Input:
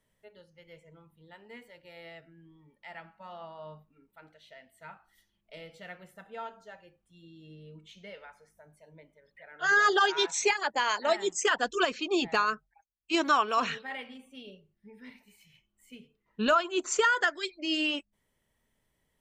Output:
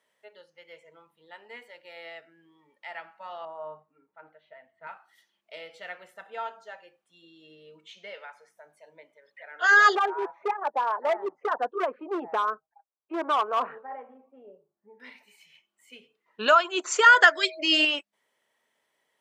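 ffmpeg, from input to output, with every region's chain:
-filter_complex "[0:a]asettb=1/sr,asplit=3[a][b][c];[a]atrim=end=3.454[d];[b]atrim=start=3.45:end=4.87,asetpts=PTS-STARTPTS,afade=t=in:d=0.004:c=qsin,afade=t=out:st=1.416:d=0.004:c=qsin,lowpass=1.3k,asubboost=boost=10.5:cutoff=150,aecho=1:1:6.5:0.34,atrim=end_sample=62622[e];[c]atrim=start=4.866[f];[d][e]acrossfade=d=0.004:c1=hsin:c2=qsin[g];[g][f]acrossfade=d=0.004:c1=qsin:c2=hsin,asettb=1/sr,asplit=3[h][i][j];[h]atrim=end=9.954[k];[i]atrim=start=9.95:end=15,asetpts=PTS-STARTPTS,afade=t=in:d=0.004:c=qsin,afade=t=out:st=5.046:d=0.004:c=qsin,lowpass=f=1.1k:w=0.5412,lowpass=f=1.1k:w=1.3066,equalizer=f=180:t=o:w=1.2:g=-2.5,volume=25.5dB,asoftclip=hard,volume=-25.5dB[l];[j]atrim=start=14.996[m];[k][l]acrossfade=d=0.004:c1=hsin:c2=qsin[n];[n][m]acrossfade=d=0.004:c1=qsin:c2=hsin,asettb=1/sr,asplit=3[o][p][q];[o]atrim=end=17.064[r];[p]atrim=start=17.06:end=17.85,asetpts=PTS-STARTPTS,afade=t=in:d=0.004:c=qsin,afade=t=out:st=0.786:d=0.004:c=qsin,acontrast=23,aeval=exprs='val(0)+0.00562*sin(2*PI*640*n/s)':c=same[s];[q]atrim=start=17.846[t];[r][s]acrossfade=d=0.004:c1=hsin:c2=qsin[u];[u][t]acrossfade=d=0.004:c1=qsin:c2=hsin,highpass=530,highshelf=f=7.8k:g=-11,volume=6.5dB"

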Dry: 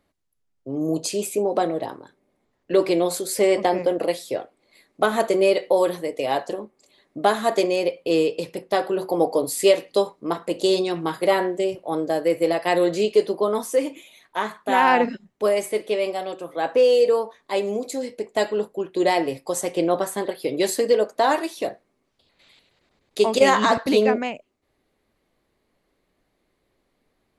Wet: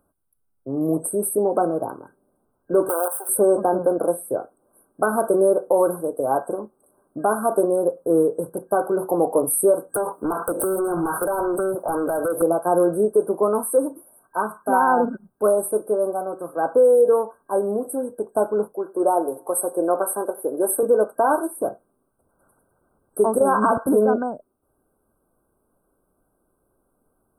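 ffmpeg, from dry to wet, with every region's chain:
-filter_complex "[0:a]asettb=1/sr,asplit=3[a][b][c];[a]atrim=end=2.894[d];[b]atrim=start=2.89:end=3.29,asetpts=PTS-STARTPTS,afade=t=in:d=0.004:c=qsin,afade=t=out:st=0.396:d=0.004:c=qsin,acrusher=bits=4:dc=4:mix=0:aa=0.000001,highpass=f=490:w=0.5412,highpass=f=490:w=1.3066[e];[c]atrim=start=3.286[f];[d][e]acrossfade=d=0.004:c1=hsin:c2=qsin[g];[g][f]acrossfade=d=0.004:c1=qsin:c2=hsin,asettb=1/sr,asplit=3[h][i][j];[h]atrim=end=9.944[k];[i]atrim=start=9.94:end=12.42,asetpts=PTS-STARTPTS,afade=t=in:d=0.004:c=qsin,afade=t=out:st=2.476:d=0.004:c=qsin,highpass=f=490:p=1,acompressor=threshold=-31dB:ratio=20:attack=3.2:release=140:knee=1:detection=peak,aeval=exprs='0.0944*sin(PI/2*3.55*val(0)/0.0944)':c=same[l];[j]atrim=start=12.416[m];[k][l]acrossfade=d=0.004:c1=hsin:c2=qsin[n];[n][m]acrossfade=d=0.004:c1=qsin:c2=hsin,asettb=1/sr,asplit=3[o][p][q];[o]atrim=end=18.734[r];[p]atrim=start=18.73:end=20.83,asetpts=PTS-STARTPTS,afade=t=in:d=0.004:c=qsin,afade=t=out:st=2.096:d=0.004:c=qsin,highpass=350,aecho=1:1:94|188|282:0.0891|0.0392|0.0173,atrim=end_sample=92610[s];[q]atrim=start=20.826[t];[r][s]acrossfade=d=0.004:c1=hsin:c2=qsin[u];[u][t]acrossfade=d=0.004:c1=qsin:c2=hsin,afftfilt=real='re*(1-between(b*sr/4096,1600,8200))':imag='im*(1-between(b*sr/4096,1600,8200))':win_size=4096:overlap=0.75,highshelf=f=4.8k:g=7.5,alimiter=level_in=9.5dB:limit=-1dB:release=50:level=0:latency=1,volume=-7.5dB"

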